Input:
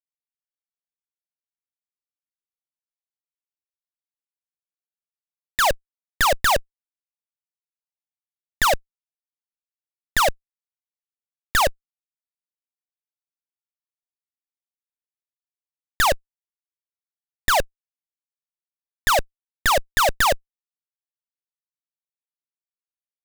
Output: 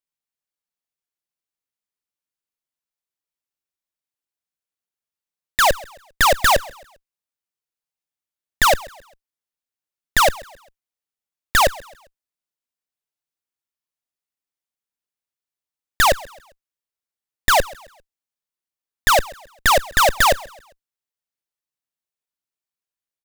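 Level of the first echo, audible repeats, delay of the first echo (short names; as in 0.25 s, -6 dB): -21.5 dB, 2, 0.133 s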